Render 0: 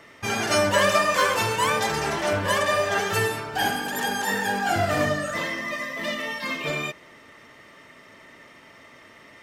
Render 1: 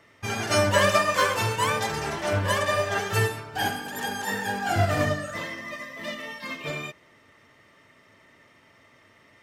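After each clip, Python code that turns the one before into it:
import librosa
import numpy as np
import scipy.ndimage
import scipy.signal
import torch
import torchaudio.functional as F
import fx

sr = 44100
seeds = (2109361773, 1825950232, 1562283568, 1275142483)

y = fx.peak_eq(x, sr, hz=100.0, db=7.5, octaves=0.82)
y = fx.upward_expand(y, sr, threshold_db=-33.0, expansion=1.5)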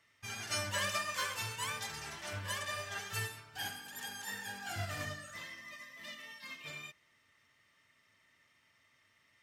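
y = fx.tone_stack(x, sr, knobs='5-5-5')
y = y * 10.0 ** (-2.0 / 20.0)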